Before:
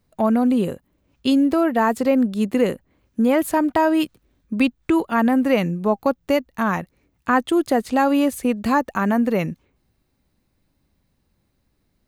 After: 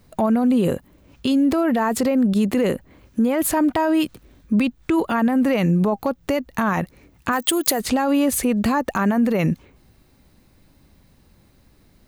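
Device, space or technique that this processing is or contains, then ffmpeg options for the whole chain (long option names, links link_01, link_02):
loud club master: -filter_complex "[0:a]acompressor=threshold=-22dB:ratio=2,asoftclip=type=hard:threshold=-13dB,alimiter=level_in=24dB:limit=-1dB:release=50:level=0:latency=1,asplit=3[link_01][link_02][link_03];[link_01]afade=type=out:start_time=7.31:duration=0.02[link_04];[link_02]aemphasis=mode=production:type=bsi,afade=type=in:start_time=7.31:duration=0.02,afade=type=out:start_time=7.79:duration=0.02[link_05];[link_03]afade=type=in:start_time=7.79:duration=0.02[link_06];[link_04][link_05][link_06]amix=inputs=3:normalize=0,volume=-11dB"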